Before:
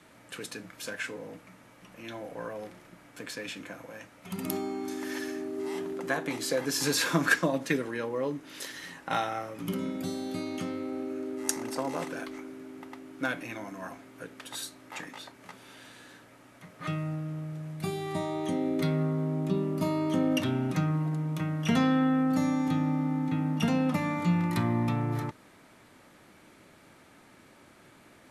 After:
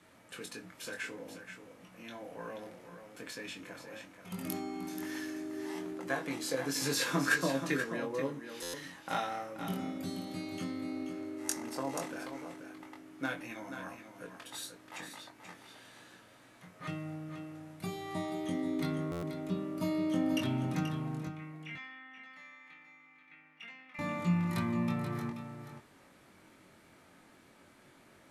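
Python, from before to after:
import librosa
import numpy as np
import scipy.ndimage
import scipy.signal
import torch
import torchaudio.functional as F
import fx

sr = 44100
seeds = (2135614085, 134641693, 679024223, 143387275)

y = fx.bandpass_q(x, sr, hz=2200.0, q=5.0, at=(21.27, 23.99))
y = fx.doubler(y, sr, ms=22.0, db=-4.5)
y = y + 10.0 ** (-9.0 / 20.0) * np.pad(y, (int(482 * sr / 1000.0), 0))[:len(y)]
y = fx.buffer_glitch(y, sr, at_s=(8.62, 19.11), block=512, repeats=9)
y = y * 10.0 ** (-6.0 / 20.0)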